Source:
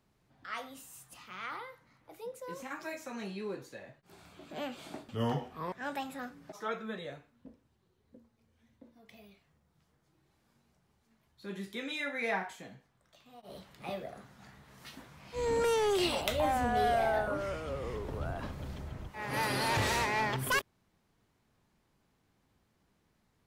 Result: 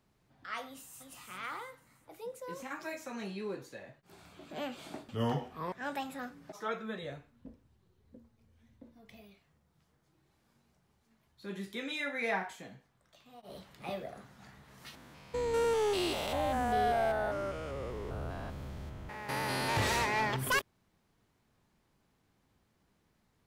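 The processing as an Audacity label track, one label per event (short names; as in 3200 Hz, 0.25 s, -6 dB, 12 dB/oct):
0.660000	1.110000	echo throw 0.34 s, feedback 40%, level -5 dB
7.030000	9.210000	low shelf 120 Hz +10.5 dB
14.950000	19.770000	stepped spectrum every 0.2 s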